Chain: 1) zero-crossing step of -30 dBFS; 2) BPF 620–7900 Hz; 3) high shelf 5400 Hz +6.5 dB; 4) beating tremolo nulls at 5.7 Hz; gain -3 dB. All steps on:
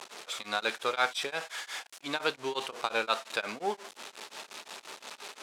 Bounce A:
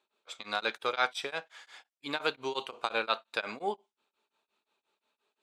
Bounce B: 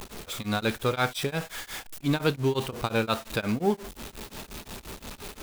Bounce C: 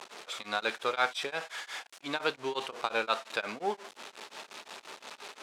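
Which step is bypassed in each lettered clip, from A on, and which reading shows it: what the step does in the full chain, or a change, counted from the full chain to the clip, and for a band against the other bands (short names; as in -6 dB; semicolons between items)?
1, distortion -13 dB; 2, 125 Hz band +24.0 dB; 3, 8 kHz band -4.0 dB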